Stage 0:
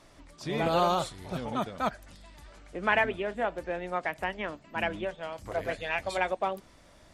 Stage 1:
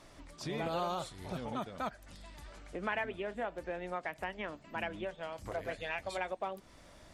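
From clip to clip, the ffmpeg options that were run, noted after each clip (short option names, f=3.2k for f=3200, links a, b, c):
-af "acompressor=threshold=-40dB:ratio=2"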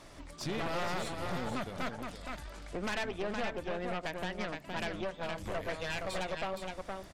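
-af "aeval=exprs='0.0891*(cos(1*acos(clip(val(0)/0.0891,-1,1)))-cos(1*PI/2))+0.0447*(cos(4*acos(clip(val(0)/0.0891,-1,1)))-cos(4*PI/2))+0.00562*(cos(6*acos(clip(val(0)/0.0891,-1,1)))-cos(6*PI/2))':c=same,aecho=1:1:467:0.398,asoftclip=type=tanh:threshold=-31dB,volume=4dB"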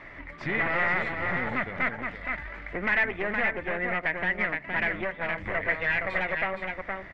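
-af "lowpass=f=2k:t=q:w=7.1,volume=3.5dB"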